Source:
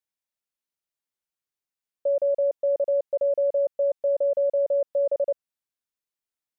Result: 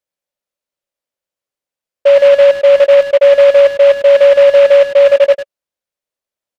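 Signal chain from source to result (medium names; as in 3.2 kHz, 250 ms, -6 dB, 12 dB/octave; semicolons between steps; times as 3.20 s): peaking EQ 560 Hz +13 dB 0.46 oct; speakerphone echo 100 ms, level -8 dB; delay time shaken by noise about 1.8 kHz, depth 0.032 ms; trim +3.5 dB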